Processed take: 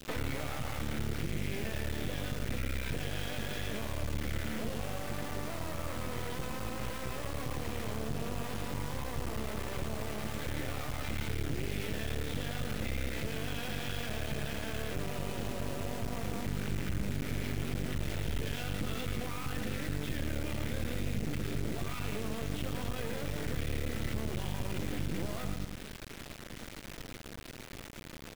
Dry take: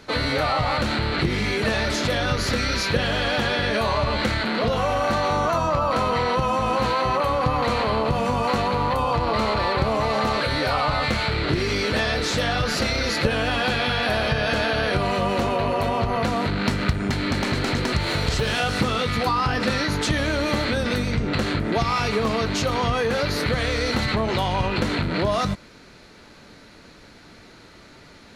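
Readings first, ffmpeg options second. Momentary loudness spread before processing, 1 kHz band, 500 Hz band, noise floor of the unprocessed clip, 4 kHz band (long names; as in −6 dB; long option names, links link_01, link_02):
2 LU, −21.0 dB, −17.0 dB, −47 dBFS, −17.0 dB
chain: -filter_complex "[0:a]asplit=2[link_01][link_02];[link_02]aecho=0:1:109|218|327:0.473|0.123|0.032[link_03];[link_01][link_03]amix=inputs=2:normalize=0,dynaudnorm=framelen=820:gausssize=17:maxgain=12dB,alimiter=limit=-11dB:level=0:latency=1,aresample=8000,aresample=44100,acompressor=threshold=-30dB:ratio=12,lowshelf=frequency=240:gain=8,acrusher=bits=4:dc=4:mix=0:aa=0.000001,asoftclip=type=tanh:threshold=-22dB,adynamicequalizer=threshold=0.00224:dfrequency=1000:dqfactor=1:tfrequency=1000:tqfactor=1:attack=5:release=100:ratio=0.375:range=3.5:mode=cutabove:tftype=bell"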